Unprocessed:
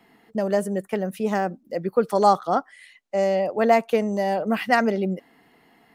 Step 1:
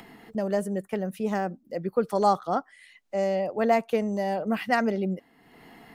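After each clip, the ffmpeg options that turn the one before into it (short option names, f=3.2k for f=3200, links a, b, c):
-af "lowshelf=f=140:g=7,acompressor=mode=upward:threshold=-33dB:ratio=2.5,volume=-5dB"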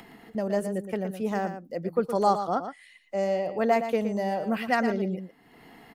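-af "aecho=1:1:117:0.335,volume=-1dB"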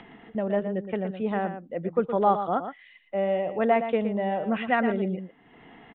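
-af "aresample=8000,aresample=44100,volume=1dB"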